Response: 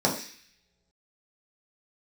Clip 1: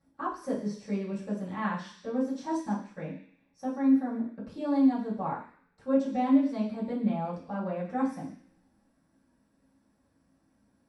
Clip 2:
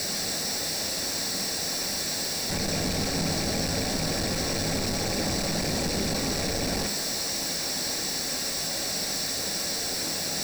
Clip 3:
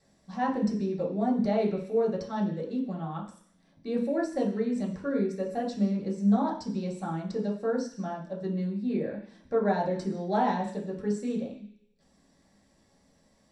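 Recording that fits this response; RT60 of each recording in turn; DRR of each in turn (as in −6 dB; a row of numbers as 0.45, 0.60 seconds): 3; non-exponential decay, non-exponential decay, non-exponential decay; −11.5, 6.0, −3.5 decibels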